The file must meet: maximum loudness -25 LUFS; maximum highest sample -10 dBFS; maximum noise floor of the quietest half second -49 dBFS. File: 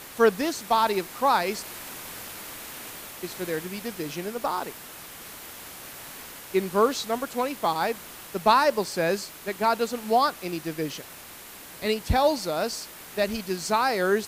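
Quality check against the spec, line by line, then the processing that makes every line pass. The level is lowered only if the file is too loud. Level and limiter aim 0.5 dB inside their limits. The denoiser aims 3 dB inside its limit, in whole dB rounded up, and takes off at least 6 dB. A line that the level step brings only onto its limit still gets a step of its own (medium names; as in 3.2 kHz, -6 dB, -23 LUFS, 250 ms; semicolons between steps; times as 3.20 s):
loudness -26.5 LUFS: pass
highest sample -7.5 dBFS: fail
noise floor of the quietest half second -44 dBFS: fail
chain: noise reduction 8 dB, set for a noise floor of -44 dBFS; peak limiter -10.5 dBFS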